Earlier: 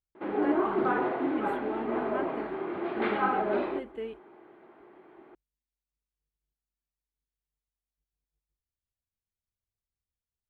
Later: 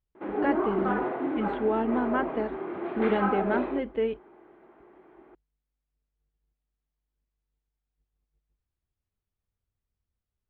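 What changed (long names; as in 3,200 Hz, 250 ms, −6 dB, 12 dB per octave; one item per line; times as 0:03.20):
speech +10.5 dB
master: add high-frequency loss of the air 230 metres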